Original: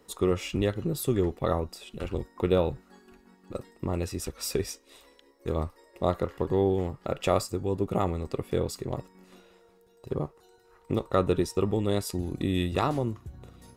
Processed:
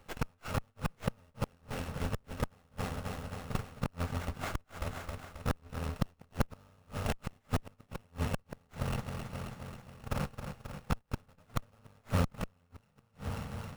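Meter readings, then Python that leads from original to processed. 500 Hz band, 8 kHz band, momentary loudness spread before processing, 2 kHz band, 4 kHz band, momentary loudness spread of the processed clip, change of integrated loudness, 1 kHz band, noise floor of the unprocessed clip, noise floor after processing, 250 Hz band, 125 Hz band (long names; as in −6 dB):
−15.5 dB, −9.5 dB, 12 LU, −1.5 dB, −8.0 dB, 8 LU, −9.5 dB, −7.5 dB, −61 dBFS, −70 dBFS, −10.0 dB, −5.0 dB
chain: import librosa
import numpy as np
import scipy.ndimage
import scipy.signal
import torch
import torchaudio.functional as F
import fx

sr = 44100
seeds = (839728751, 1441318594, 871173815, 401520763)

p1 = fx.bit_reversed(x, sr, seeds[0], block=128)
p2 = fx.sample_hold(p1, sr, seeds[1], rate_hz=5200.0, jitter_pct=0)
p3 = p1 + (p2 * 10.0 ** (-8.0 / 20.0))
p4 = fx.high_shelf(p3, sr, hz=5700.0, db=-8.5)
p5 = p4 + fx.echo_feedback(p4, sr, ms=268, feedback_pct=60, wet_db=-11, dry=0)
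p6 = fx.gate_flip(p5, sr, shuts_db=-19.0, range_db=-39)
p7 = fx.rider(p6, sr, range_db=4, speed_s=0.5)
p8 = fx.running_max(p7, sr, window=9)
y = p8 * 10.0 ** (1.0 / 20.0)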